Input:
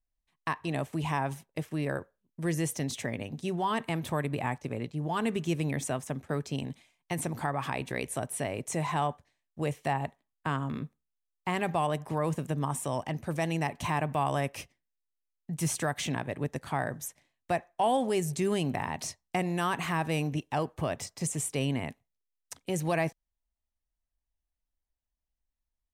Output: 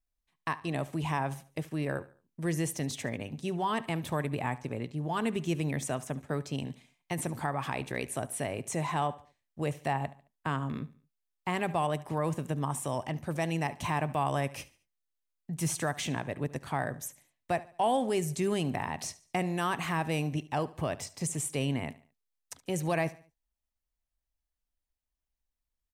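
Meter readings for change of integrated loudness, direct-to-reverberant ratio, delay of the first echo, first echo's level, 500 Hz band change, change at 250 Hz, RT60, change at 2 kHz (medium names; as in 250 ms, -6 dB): -1.0 dB, no reverb, 72 ms, -19.0 dB, -1.0 dB, -1.0 dB, no reverb, -1.0 dB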